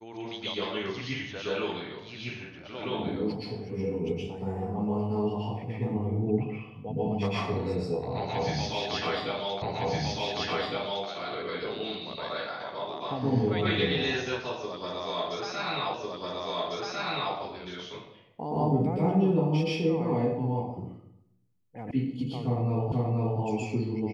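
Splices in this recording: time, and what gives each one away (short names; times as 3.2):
9.62 repeat of the last 1.46 s
15.94 repeat of the last 1.4 s
21.91 sound cut off
22.92 repeat of the last 0.48 s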